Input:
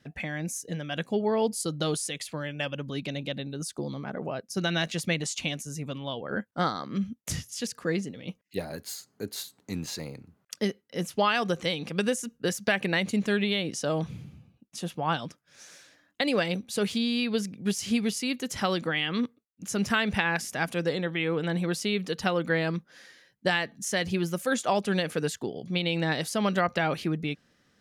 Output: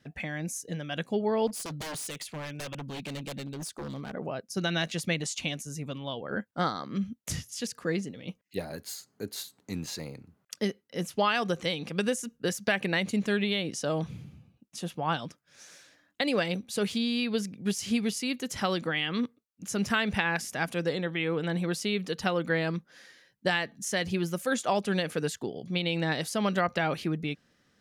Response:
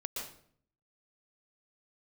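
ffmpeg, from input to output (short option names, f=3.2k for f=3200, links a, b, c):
-filter_complex "[0:a]asettb=1/sr,asplit=3[a][b][c];[a]atrim=end=1.474[d];[b]atrim=start=1.47:end=4.13,asetpts=PTS-STARTPTS,afade=t=in:d=0.004:c=qsin,afade=t=out:st=2.656:d=0.004:c=qsin,aeval=exprs='0.0299*(abs(mod(val(0)/0.0299+3,4)-2)-1)':c=same[e];[c]atrim=start=4.126[f];[d][e]acrossfade=d=0.004:c1=hsin:c2=qsin[g];[g][f]acrossfade=d=0.004:c1=qsin:c2=hsin,volume=-1.5dB"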